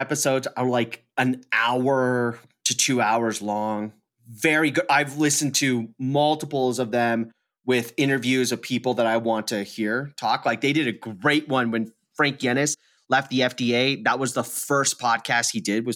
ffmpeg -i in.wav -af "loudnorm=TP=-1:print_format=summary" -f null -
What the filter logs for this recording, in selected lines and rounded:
Input Integrated:    -22.8 LUFS
Input True Peak:      -6.9 dBTP
Input LRA:             1.4 LU
Input Threshold:     -32.9 LUFS